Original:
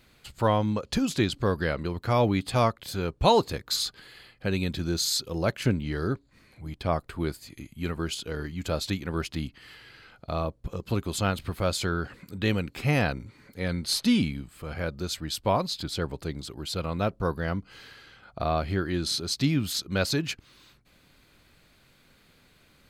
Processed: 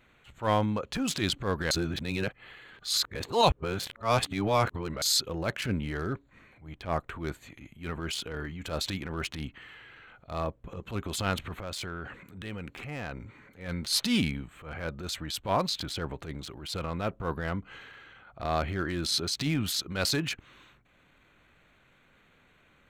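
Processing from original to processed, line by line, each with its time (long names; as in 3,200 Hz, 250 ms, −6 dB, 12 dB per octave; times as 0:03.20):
0:01.71–0:05.02: reverse
0:11.53–0:13.66: downward compressor 4 to 1, threshold −32 dBFS
whole clip: adaptive Wiener filter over 9 samples; tilt shelving filter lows −4 dB, about 700 Hz; transient designer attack −10 dB, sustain +4 dB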